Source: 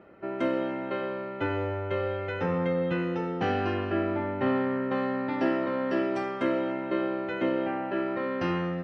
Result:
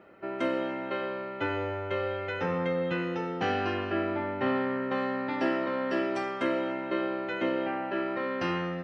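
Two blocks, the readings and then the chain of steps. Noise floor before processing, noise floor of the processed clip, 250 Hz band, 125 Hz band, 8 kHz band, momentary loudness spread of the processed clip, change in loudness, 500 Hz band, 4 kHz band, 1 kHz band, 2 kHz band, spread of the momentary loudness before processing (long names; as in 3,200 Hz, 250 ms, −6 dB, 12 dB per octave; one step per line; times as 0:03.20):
−36 dBFS, −37 dBFS, −2.5 dB, −4.5 dB, can't be measured, 4 LU, −1.5 dB, −1.5 dB, +2.5 dB, 0.0 dB, +1.5 dB, 4 LU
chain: spectral tilt +1.5 dB per octave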